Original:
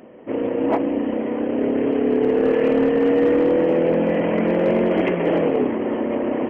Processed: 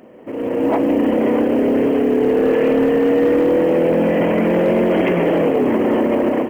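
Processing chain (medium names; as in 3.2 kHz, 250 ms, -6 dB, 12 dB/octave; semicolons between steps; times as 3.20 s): peak limiter -22.5 dBFS, peak gain reduction 11.5 dB; level rider gain up to 13.5 dB; companded quantiser 8-bit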